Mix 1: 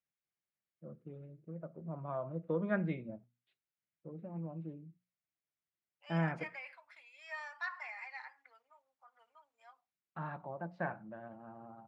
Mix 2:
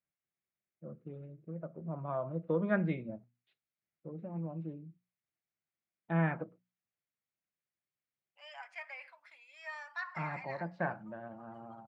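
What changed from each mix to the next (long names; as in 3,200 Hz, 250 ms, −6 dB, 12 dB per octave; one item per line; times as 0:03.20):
first voice +3.0 dB
second voice: entry +2.35 s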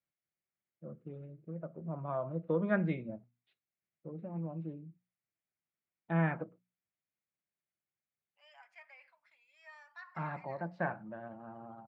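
second voice −10.5 dB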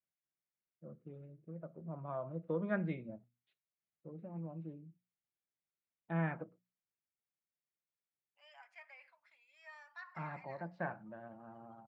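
first voice −5.0 dB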